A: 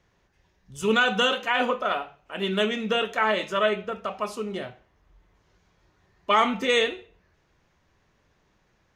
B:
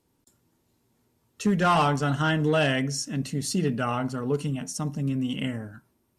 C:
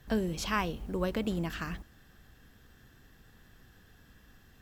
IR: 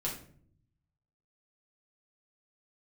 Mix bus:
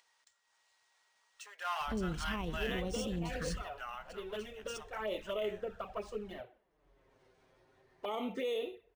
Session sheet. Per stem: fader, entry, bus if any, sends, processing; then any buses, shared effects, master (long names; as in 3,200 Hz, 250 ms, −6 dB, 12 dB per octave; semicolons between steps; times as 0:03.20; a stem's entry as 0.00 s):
0:04.93 −22.5 dB → 0:05.16 −15.5 dB, 1.75 s, bus A, no send, drawn EQ curve 140 Hz 0 dB, 490 Hz +13 dB, 1,100 Hz +5 dB
−11.0 dB, 0.00 s, no bus, no send, Bessel high-pass filter 1,100 Hz, order 6
−3.0 dB, 1.80 s, bus A, no send, low-shelf EQ 80 Hz +7 dB
bus A: 0.0 dB, flanger swept by the level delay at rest 7.9 ms, full sweep at −29.5 dBFS; brickwall limiter −28.5 dBFS, peak gain reduction 9.5 dB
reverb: not used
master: upward compression, threshold −57 dBFS; linearly interpolated sample-rate reduction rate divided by 3×